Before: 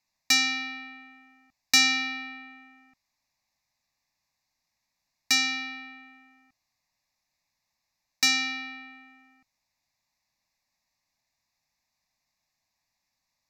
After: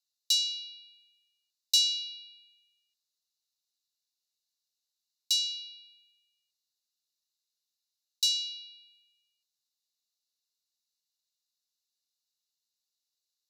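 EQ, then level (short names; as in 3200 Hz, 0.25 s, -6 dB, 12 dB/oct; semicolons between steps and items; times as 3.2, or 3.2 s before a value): rippled Chebyshev high-pass 2800 Hz, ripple 6 dB; 0.0 dB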